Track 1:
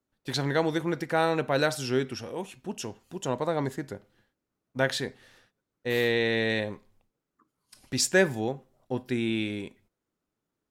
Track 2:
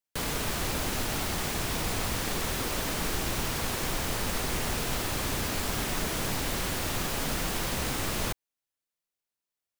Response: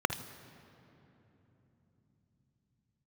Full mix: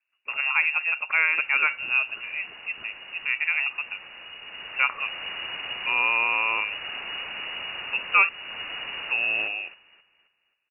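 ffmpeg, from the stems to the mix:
-filter_complex "[0:a]lowpass=f=2.4k:w=0.5412,lowpass=f=2.4k:w=1.3066,volume=2.5dB,asplit=3[a][b][c];[a]atrim=end=8.29,asetpts=PTS-STARTPTS,afade=t=out:st=8.286:d=0.004:c=hsin[d];[b]atrim=start=8.29:end=9.05,asetpts=PTS-STARTPTS,volume=0[e];[c]atrim=start=9.05,asetpts=PTS-STARTPTS,afade=t=in:d=0.004:c=hsin[f];[d][e][f]concat=n=3:v=0:a=1,asplit=2[g][h];[1:a]adelay=1150,volume=-3dB,afade=t=in:st=4.39:d=0.68:silence=0.354813,asplit=2[i][j];[j]volume=-15dB[k];[h]apad=whole_len=482766[l];[i][l]sidechaincompress=threshold=-25dB:ratio=8:attack=24:release=463[m];[k]aecho=0:1:266|532|798|1064|1330:1|0.38|0.144|0.0549|0.0209[n];[g][m][n]amix=inputs=3:normalize=0,lowpass=f=2.5k:t=q:w=0.5098,lowpass=f=2.5k:t=q:w=0.6013,lowpass=f=2.5k:t=q:w=0.9,lowpass=f=2.5k:t=q:w=2.563,afreqshift=-2900"

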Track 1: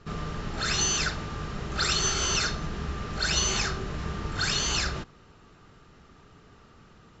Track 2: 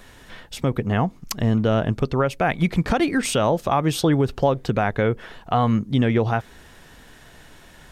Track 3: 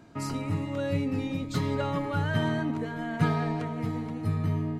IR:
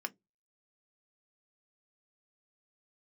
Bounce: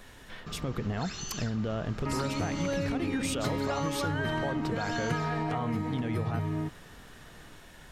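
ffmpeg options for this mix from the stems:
-filter_complex "[0:a]acompressor=threshold=-36dB:ratio=5,adelay=400,volume=-2.5dB[a];[1:a]alimiter=limit=-17dB:level=0:latency=1:release=27,volume=-4dB[b];[2:a]adelay=1900,volume=1.5dB,asplit=2[c][d];[d]volume=-5.5dB[e];[3:a]atrim=start_sample=2205[f];[e][f]afir=irnorm=-1:irlink=0[g];[a][b][c][g]amix=inputs=4:normalize=0,acompressor=threshold=-27dB:ratio=6"

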